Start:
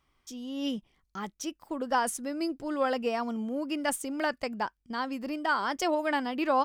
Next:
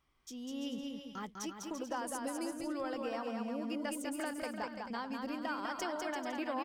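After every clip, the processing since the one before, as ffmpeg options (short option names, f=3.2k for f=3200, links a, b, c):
-filter_complex "[0:a]acompressor=threshold=-34dB:ratio=3,asplit=2[a][b];[b]aecho=0:1:200|340|438|506.6|554.6:0.631|0.398|0.251|0.158|0.1[c];[a][c]amix=inputs=2:normalize=0,volume=-4.5dB"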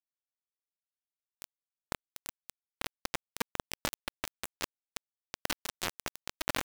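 -af "lowshelf=f=210:t=q:w=1.5:g=7,bandreject=f=1.9k:w=6.5,acrusher=bits=4:mix=0:aa=0.000001,volume=7.5dB"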